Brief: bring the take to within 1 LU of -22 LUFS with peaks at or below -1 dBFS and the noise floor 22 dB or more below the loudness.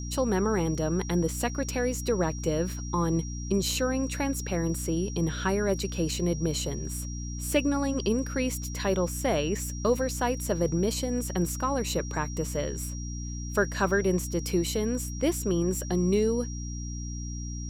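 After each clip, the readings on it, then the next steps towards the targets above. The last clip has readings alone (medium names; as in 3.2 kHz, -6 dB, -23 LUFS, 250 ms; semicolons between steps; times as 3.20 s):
hum 60 Hz; highest harmonic 300 Hz; hum level -33 dBFS; steady tone 5.7 kHz; tone level -42 dBFS; loudness -28.5 LUFS; peak level -11.0 dBFS; loudness target -22.0 LUFS
-> hum notches 60/120/180/240/300 Hz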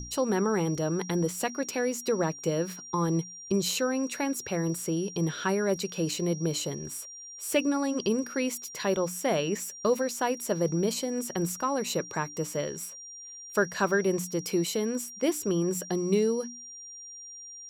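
hum not found; steady tone 5.7 kHz; tone level -42 dBFS
-> band-stop 5.7 kHz, Q 30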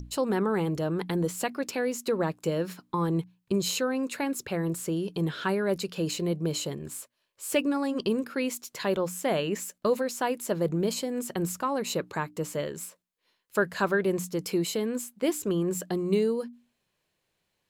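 steady tone not found; loudness -29.5 LUFS; peak level -12.0 dBFS; loudness target -22.0 LUFS
-> trim +7.5 dB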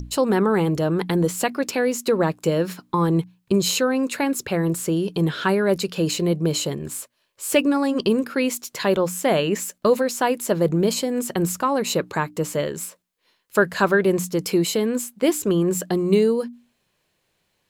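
loudness -22.0 LUFS; peak level -4.5 dBFS; noise floor -71 dBFS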